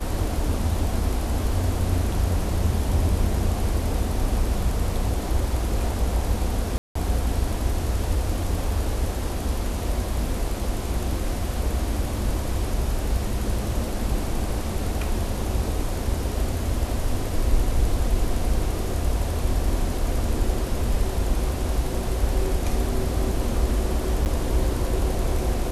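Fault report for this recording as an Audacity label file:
6.780000	6.950000	dropout 174 ms
24.250000	24.260000	dropout 9.6 ms

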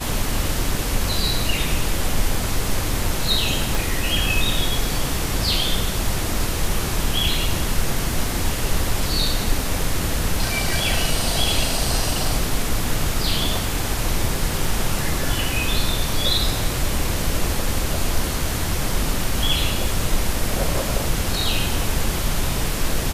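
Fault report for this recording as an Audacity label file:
3.750000	3.750000	pop

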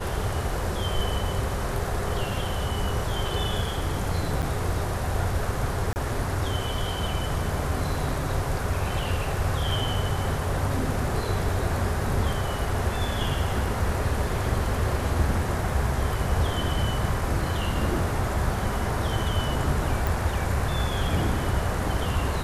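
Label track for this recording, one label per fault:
4.420000	4.430000	dropout 7.9 ms
5.930000	5.960000	dropout 29 ms
20.070000	20.070000	pop

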